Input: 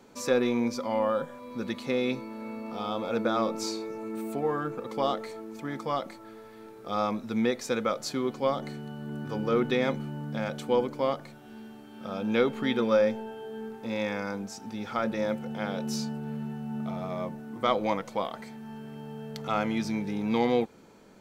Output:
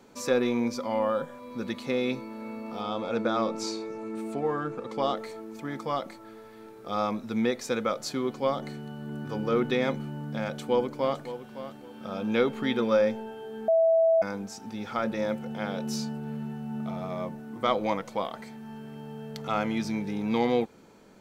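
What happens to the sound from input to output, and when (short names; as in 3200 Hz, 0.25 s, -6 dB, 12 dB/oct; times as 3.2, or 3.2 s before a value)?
2.81–5.16 LPF 8900 Hz
10.47–11.25 echo throw 0.56 s, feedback 25%, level -12.5 dB
13.68–14.22 bleep 655 Hz -18 dBFS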